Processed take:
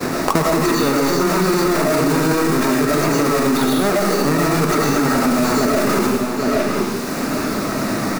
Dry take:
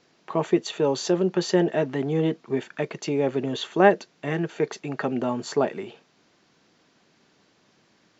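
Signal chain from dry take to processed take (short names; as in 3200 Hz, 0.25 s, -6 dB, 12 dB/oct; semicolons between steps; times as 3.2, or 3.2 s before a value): half-waves squared off; expander -53 dBFS; thirty-one-band EQ 250 Hz +8 dB, 1250 Hz +5 dB, 3150 Hz -12 dB; reverse; compressor, threshold -28 dBFS, peak gain reduction 20 dB; reverse; outdoor echo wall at 140 m, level -13 dB; reverb RT60 0.80 s, pre-delay 66 ms, DRR -7 dB; maximiser +21.5 dB; three-band squash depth 100%; gain -7.5 dB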